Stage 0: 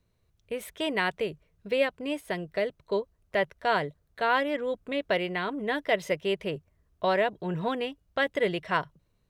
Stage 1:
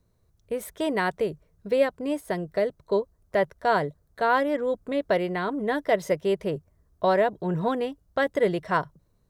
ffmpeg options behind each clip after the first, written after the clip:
ffmpeg -i in.wav -af "equalizer=frequency=2700:width=1.3:gain=-11.5,volume=4.5dB" out.wav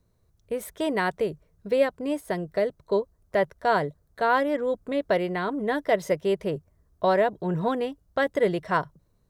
ffmpeg -i in.wav -af anull out.wav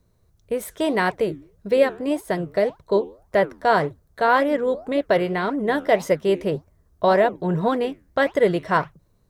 ffmpeg -i in.wav -af "flanger=delay=3.2:depth=9.9:regen=-84:speed=1.8:shape=triangular,volume=9dB" out.wav

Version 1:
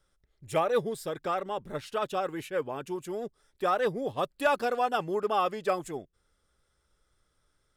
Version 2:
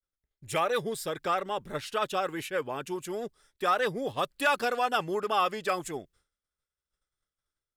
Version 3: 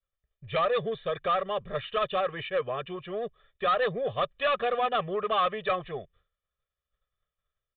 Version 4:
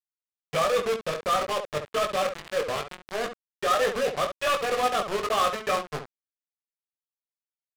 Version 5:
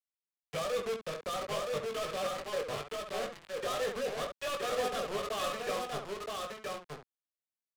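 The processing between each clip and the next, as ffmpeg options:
ffmpeg -i in.wav -filter_complex "[0:a]agate=range=-33dB:threshold=-58dB:ratio=3:detection=peak,acrossover=split=1200[link_01][link_02];[link_01]alimiter=limit=-23.5dB:level=0:latency=1[link_03];[link_02]dynaudnorm=framelen=210:gausssize=3:maxgain=5.5dB[link_04];[link_03][link_04]amix=inputs=2:normalize=0" out.wav
ffmpeg -i in.wav -af "aecho=1:1:1.7:0.99,aresample=8000,asoftclip=type=tanh:threshold=-19.5dB,aresample=44100" out.wav
ffmpeg -i in.wav -filter_complex "[0:a]acrusher=bits=4:mix=0:aa=0.000001,asplit=2[link_01][link_02];[link_02]aecho=0:1:20|69:0.631|0.422[link_03];[link_01][link_03]amix=inputs=2:normalize=0,adynamicsmooth=sensitivity=7:basefreq=1000" out.wav
ffmpeg -i in.wav -filter_complex "[0:a]acrossover=split=220|620|2700[link_01][link_02][link_03][link_04];[link_03]asoftclip=type=tanh:threshold=-30dB[link_05];[link_01][link_02][link_05][link_04]amix=inputs=4:normalize=0,aecho=1:1:971:0.708,volume=-8dB" out.wav

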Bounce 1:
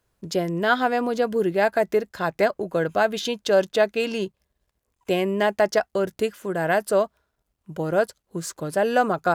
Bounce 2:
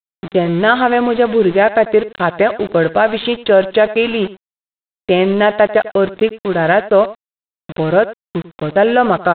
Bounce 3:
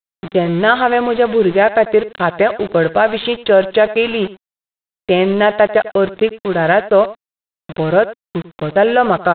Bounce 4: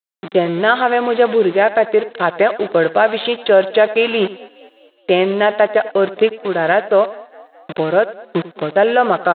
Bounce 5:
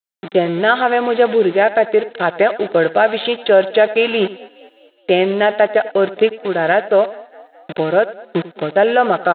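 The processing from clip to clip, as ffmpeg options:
ffmpeg -i in.wav -af "aresample=8000,aeval=exprs='val(0)*gte(abs(val(0)),0.0211)':channel_layout=same,aresample=44100,aecho=1:1:94:0.126,alimiter=level_in=11dB:limit=-1dB:release=50:level=0:latency=1,volume=-1dB" out.wav
ffmpeg -i in.wav -af "equalizer=frequency=260:width=4.4:gain=-6" out.wav
ffmpeg -i in.wav -filter_complex "[0:a]highpass=230,dynaudnorm=framelen=110:gausssize=5:maxgain=15dB,asplit=5[link_01][link_02][link_03][link_04][link_05];[link_02]adelay=209,afreqshift=32,volume=-23dB[link_06];[link_03]adelay=418,afreqshift=64,volume=-28.2dB[link_07];[link_04]adelay=627,afreqshift=96,volume=-33.4dB[link_08];[link_05]adelay=836,afreqshift=128,volume=-38.6dB[link_09];[link_01][link_06][link_07][link_08][link_09]amix=inputs=5:normalize=0,volume=-1dB" out.wav
ffmpeg -i in.wav -af "asuperstop=centerf=1100:order=4:qfactor=6.8" out.wav

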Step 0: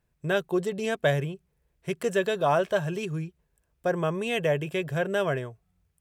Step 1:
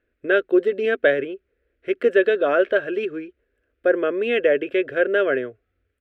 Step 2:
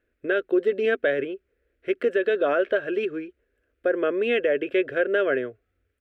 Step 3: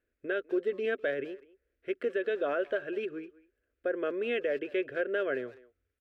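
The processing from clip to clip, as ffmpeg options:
ffmpeg -i in.wav -af "firequalizer=gain_entry='entry(100,0);entry(160,-21);entry(250,11);entry(520,12);entry(900,-11);entry(1400,12);entry(2900,5);entry(6600,-19)':delay=0.05:min_phase=1,volume=-2dB" out.wav
ffmpeg -i in.wav -af "alimiter=limit=-12dB:level=0:latency=1:release=123,volume=-1dB" out.wav
ffmpeg -i in.wav -filter_complex "[0:a]asplit=2[link_01][link_02];[link_02]adelay=200,highpass=300,lowpass=3400,asoftclip=type=hard:threshold=-22.5dB,volume=-19dB[link_03];[link_01][link_03]amix=inputs=2:normalize=0,volume=-8.5dB" out.wav

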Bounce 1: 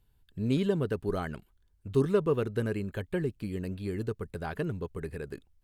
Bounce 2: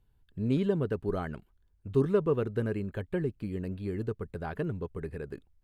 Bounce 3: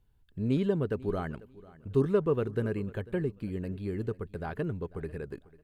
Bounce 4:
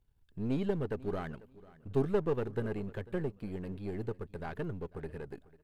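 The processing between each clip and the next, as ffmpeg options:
ffmpeg -i in.wav -af "highshelf=frequency=3000:gain=-10" out.wav
ffmpeg -i in.wav -af "aecho=1:1:495|990:0.0944|0.0227" out.wav
ffmpeg -i in.wav -af "aeval=exprs='if(lt(val(0),0),0.447*val(0),val(0))':channel_layout=same,volume=-1.5dB" out.wav

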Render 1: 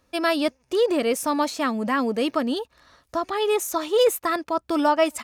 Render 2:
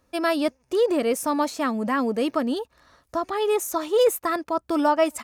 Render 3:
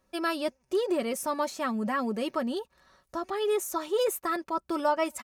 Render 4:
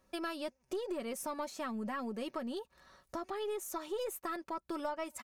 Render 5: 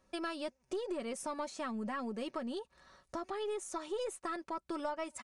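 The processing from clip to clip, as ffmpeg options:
ffmpeg -i in.wav -af "equalizer=frequency=3400:width_type=o:width=1.7:gain=-4.5" out.wav
ffmpeg -i in.wav -af "aecho=1:1:5.3:0.57,volume=-6dB" out.wav
ffmpeg -i in.wav -af "aeval=exprs='0.188*(cos(1*acos(clip(val(0)/0.188,-1,1)))-cos(1*PI/2))+0.00944*(cos(4*acos(clip(val(0)/0.188,-1,1)))-cos(4*PI/2))':channel_layout=same,acompressor=threshold=-39dB:ratio=3" out.wav
ffmpeg -i in.wav -af "aresample=22050,aresample=44100" out.wav

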